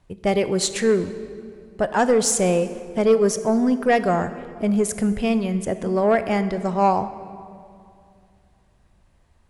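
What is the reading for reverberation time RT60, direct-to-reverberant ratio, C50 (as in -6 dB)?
2.4 s, 11.0 dB, 12.0 dB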